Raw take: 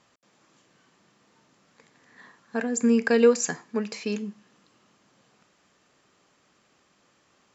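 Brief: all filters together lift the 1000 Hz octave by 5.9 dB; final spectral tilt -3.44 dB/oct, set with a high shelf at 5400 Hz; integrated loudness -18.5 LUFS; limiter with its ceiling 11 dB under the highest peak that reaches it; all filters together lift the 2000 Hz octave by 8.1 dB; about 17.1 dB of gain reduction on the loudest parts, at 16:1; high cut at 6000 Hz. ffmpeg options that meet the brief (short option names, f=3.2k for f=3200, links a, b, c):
-af "lowpass=6k,equalizer=f=1k:t=o:g=5.5,equalizer=f=2k:t=o:g=8,highshelf=f=5.4k:g=4.5,acompressor=threshold=-28dB:ratio=16,volume=19.5dB,alimiter=limit=-7.5dB:level=0:latency=1"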